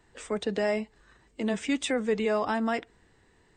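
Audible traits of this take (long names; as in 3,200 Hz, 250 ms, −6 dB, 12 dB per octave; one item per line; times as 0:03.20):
background noise floor −64 dBFS
spectral slope −3.5 dB per octave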